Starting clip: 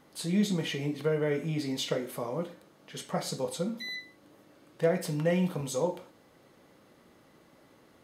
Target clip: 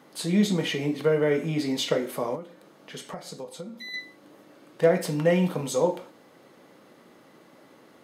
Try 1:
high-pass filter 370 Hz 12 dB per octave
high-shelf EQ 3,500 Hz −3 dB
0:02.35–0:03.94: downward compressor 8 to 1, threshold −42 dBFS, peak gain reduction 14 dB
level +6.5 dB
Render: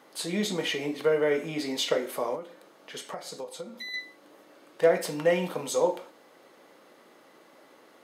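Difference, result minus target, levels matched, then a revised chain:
125 Hz band −7.5 dB
high-pass filter 170 Hz 12 dB per octave
high-shelf EQ 3,500 Hz −3 dB
0:02.35–0:03.94: downward compressor 8 to 1, threshold −42 dBFS, peak gain reduction 15.5 dB
level +6.5 dB

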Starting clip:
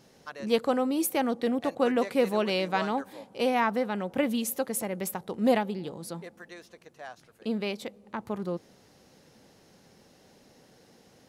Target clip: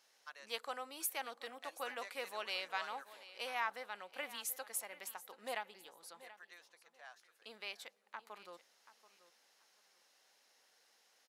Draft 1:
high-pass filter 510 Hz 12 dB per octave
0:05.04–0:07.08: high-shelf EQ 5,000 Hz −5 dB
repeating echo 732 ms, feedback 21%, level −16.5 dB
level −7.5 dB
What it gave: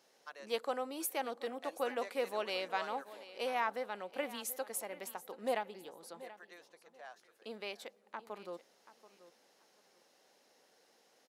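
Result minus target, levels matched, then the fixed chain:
500 Hz band +6.5 dB
high-pass filter 1,100 Hz 12 dB per octave
0:05.04–0:07.08: high-shelf EQ 5,000 Hz −5 dB
repeating echo 732 ms, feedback 21%, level −16.5 dB
level −7.5 dB

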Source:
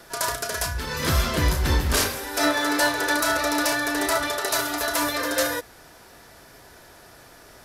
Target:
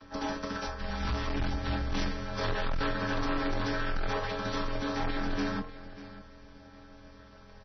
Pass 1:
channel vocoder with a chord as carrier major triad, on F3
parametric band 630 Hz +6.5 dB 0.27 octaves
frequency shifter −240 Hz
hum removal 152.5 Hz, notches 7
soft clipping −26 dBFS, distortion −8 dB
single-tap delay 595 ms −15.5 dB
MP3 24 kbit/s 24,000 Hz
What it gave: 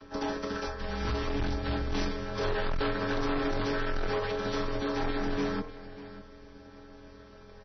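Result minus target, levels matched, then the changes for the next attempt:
500 Hz band +3.0 dB
change: parametric band 630 Hz −4 dB 0.27 octaves

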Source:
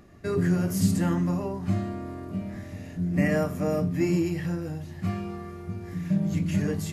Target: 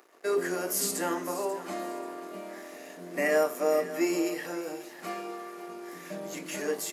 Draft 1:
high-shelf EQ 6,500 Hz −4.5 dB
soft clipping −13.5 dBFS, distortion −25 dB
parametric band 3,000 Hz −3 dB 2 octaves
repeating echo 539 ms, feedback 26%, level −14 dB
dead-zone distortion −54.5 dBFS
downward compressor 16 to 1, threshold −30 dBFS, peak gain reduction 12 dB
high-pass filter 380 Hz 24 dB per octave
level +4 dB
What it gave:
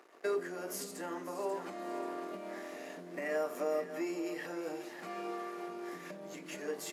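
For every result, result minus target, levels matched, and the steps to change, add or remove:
soft clipping: distortion +20 dB; downward compressor: peak gain reduction +12 dB; 8,000 Hz band −4.0 dB
change: soft clipping −2.5 dBFS, distortion −45 dB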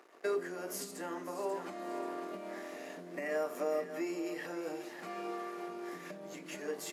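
downward compressor: peak gain reduction +14 dB; 8,000 Hz band −4.0 dB
remove: downward compressor 16 to 1, threshold −30 dBFS, peak gain reduction 14 dB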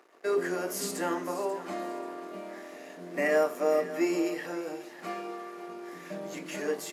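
8,000 Hz band −5.0 dB
change: high-shelf EQ 6,500 Hz +5.5 dB

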